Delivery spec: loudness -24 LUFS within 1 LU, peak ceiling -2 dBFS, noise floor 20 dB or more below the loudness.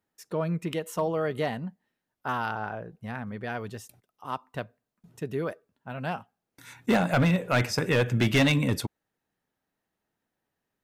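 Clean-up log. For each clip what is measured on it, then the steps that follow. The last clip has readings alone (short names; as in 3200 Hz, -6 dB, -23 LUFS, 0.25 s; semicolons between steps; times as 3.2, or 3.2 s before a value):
clipped 0.6%; flat tops at -17.0 dBFS; loudness -28.5 LUFS; peak -17.0 dBFS; loudness target -24.0 LUFS
-> clip repair -17 dBFS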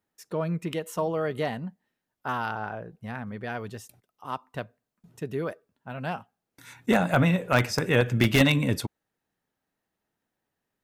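clipped 0.0%; loudness -27.0 LUFS; peak -8.0 dBFS; loudness target -24.0 LUFS
-> gain +3 dB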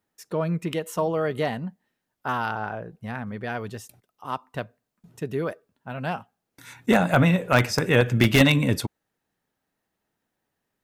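loudness -24.0 LUFS; peak -5.0 dBFS; noise floor -81 dBFS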